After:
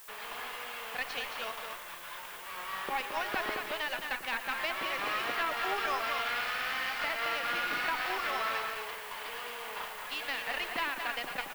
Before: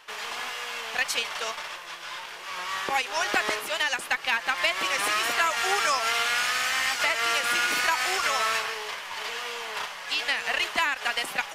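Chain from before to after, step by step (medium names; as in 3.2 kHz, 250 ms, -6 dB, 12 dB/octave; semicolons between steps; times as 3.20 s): low-pass 4.6 kHz 24 dB/octave; treble shelf 2.8 kHz -7.5 dB; valve stage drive 9 dB, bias 0.7; in parallel at -2 dB: peak limiter -22.5 dBFS, peak gain reduction 9 dB; on the sum: bass shelf 87 Hz +10 dB; added noise blue -45 dBFS; loudspeakers at several distances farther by 40 m -12 dB, 75 m -6 dB; trim -7 dB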